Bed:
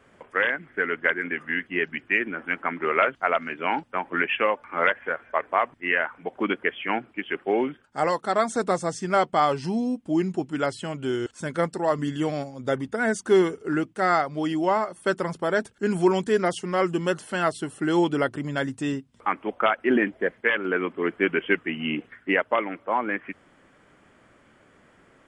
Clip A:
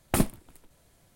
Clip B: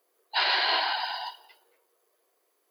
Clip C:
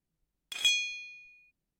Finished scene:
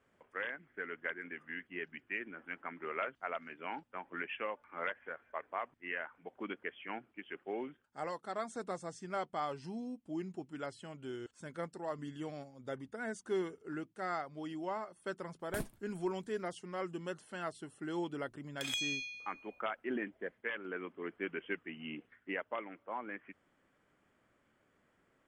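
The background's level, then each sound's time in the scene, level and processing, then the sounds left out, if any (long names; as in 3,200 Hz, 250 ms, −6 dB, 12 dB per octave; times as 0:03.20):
bed −16.5 dB
0:15.40: mix in A −16.5 dB
0:18.09: mix in C −2 dB + downward compressor, threshold −31 dBFS
not used: B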